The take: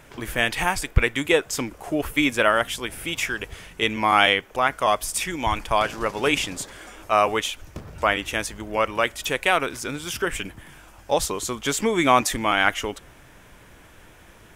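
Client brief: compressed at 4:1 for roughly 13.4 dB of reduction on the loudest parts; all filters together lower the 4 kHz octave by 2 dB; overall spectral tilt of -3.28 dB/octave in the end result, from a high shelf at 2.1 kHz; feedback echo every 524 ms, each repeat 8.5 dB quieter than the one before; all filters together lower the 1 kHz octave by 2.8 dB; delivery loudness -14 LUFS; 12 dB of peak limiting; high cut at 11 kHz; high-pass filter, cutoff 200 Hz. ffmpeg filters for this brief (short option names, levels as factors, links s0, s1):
-af "highpass=200,lowpass=11000,equalizer=f=1000:t=o:g=-4.5,highshelf=f=2100:g=4.5,equalizer=f=4000:t=o:g=-7,acompressor=threshold=0.0282:ratio=4,alimiter=level_in=1.33:limit=0.0631:level=0:latency=1,volume=0.75,aecho=1:1:524|1048|1572|2096:0.376|0.143|0.0543|0.0206,volume=15"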